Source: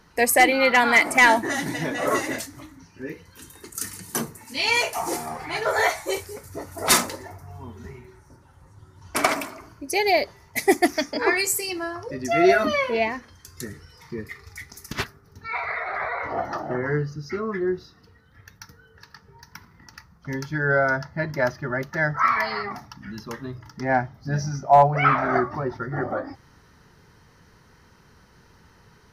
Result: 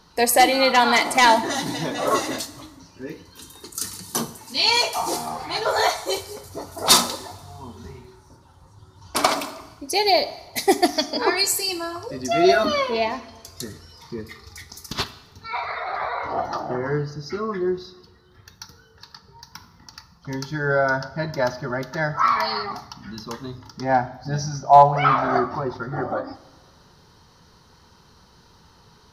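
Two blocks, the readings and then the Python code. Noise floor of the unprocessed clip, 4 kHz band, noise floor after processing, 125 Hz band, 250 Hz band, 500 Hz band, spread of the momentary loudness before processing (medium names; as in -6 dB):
-55 dBFS, +7.0 dB, -54 dBFS, -0.5 dB, +0.5 dB, +1.0 dB, 21 LU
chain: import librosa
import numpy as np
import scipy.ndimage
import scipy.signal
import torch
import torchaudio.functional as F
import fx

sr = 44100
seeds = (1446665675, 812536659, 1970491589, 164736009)

y = fx.graphic_eq(x, sr, hz=(1000, 2000, 4000), db=(5, -8, 10))
y = fx.rev_double_slope(y, sr, seeds[0], early_s=0.88, late_s=2.7, knee_db=-18, drr_db=12.0)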